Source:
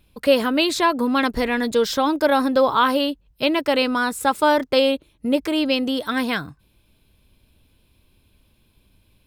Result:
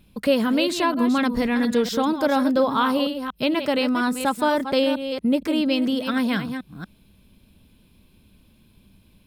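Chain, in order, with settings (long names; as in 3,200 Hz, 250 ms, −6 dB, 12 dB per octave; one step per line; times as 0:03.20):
delay that plays each chunk backwards 236 ms, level −9.5 dB
parametric band 200 Hz +10 dB 0.81 octaves
in parallel at +2.5 dB: downward compressor, threshold −31 dBFS, peak gain reduction 20 dB
on the sum: level −6 dB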